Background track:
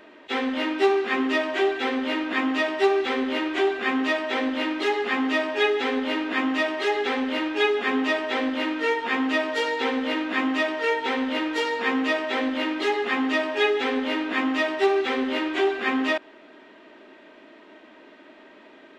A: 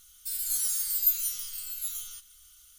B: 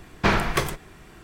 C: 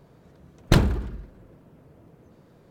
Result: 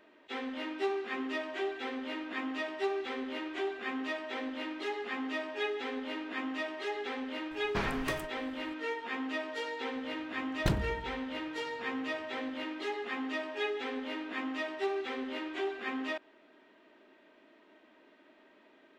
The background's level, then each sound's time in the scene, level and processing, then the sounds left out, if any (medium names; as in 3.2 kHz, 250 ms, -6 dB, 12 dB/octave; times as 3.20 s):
background track -12.5 dB
7.51 s: add B -14 dB
9.94 s: add C -12 dB
not used: A